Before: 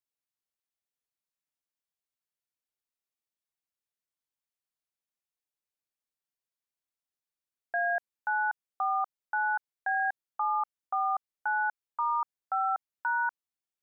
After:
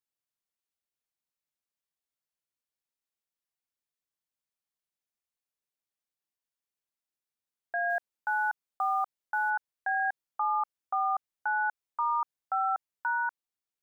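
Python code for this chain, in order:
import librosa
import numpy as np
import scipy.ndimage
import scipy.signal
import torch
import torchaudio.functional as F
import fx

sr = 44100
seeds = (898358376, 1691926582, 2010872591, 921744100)

y = fx.block_float(x, sr, bits=7, at=(7.9, 9.51))
y = fx.rider(y, sr, range_db=10, speed_s=0.5)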